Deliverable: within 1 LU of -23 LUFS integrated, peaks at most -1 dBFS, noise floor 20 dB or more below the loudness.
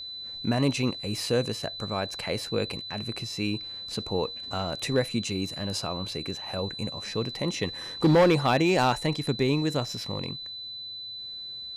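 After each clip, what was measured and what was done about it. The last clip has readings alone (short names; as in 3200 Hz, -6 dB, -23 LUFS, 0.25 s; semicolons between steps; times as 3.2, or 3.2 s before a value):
clipped 0.5%; flat tops at -15.0 dBFS; steady tone 4000 Hz; tone level -36 dBFS; loudness -28.0 LUFS; peak -15.0 dBFS; loudness target -23.0 LUFS
-> clip repair -15 dBFS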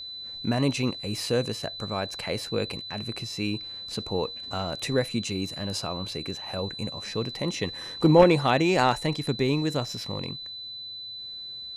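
clipped 0.0%; steady tone 4000 Hz; tone level -36 dBFS
-> notch 4000 Hz, Q 30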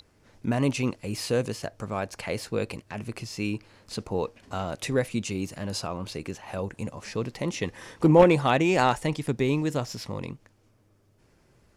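steady tone none; loudness -27.5 LUFS; peak -6.0 dBFS; loudness target -23.0 LUFS
-> gain +4.5 dB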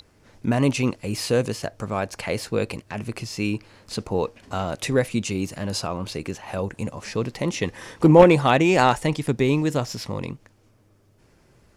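loudness -23.0 LUFS; peak -1.5 dBFS; noise floor -59 dBFS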